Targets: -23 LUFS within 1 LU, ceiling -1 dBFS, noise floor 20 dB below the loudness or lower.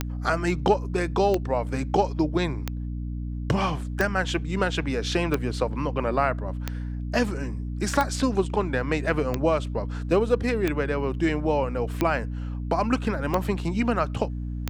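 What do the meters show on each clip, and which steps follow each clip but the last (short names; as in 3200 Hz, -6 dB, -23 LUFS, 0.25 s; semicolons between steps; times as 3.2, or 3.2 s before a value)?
clicks 12; hum 60 Hz; harmonics up to 300 Hz; hum level -28 dBFS; loudness -26.0 LUFS; peak -7.0 dBFS; loudness target -23.0 LUFS
-> de-click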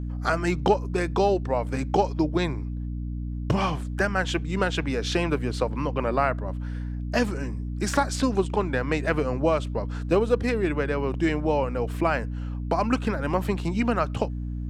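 clicks 0; hum 60 Hz; harmonics up to 300 Hz; hum level -28 dBFS
-> de-hum 60 Hz, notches 5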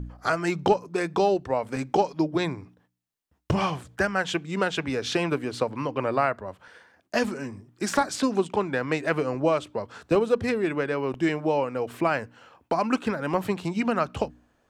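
hum none; loudness -26.5 LUFS; peak -7.5 dBFS; loudness target -23.0 LUFS
-> gain +3.5 dB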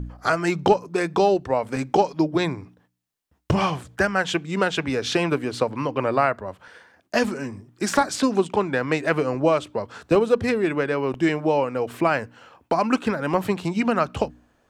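loudness -23.0 LUFS; peak -4.0 dBFS; noise floor -66 dBFS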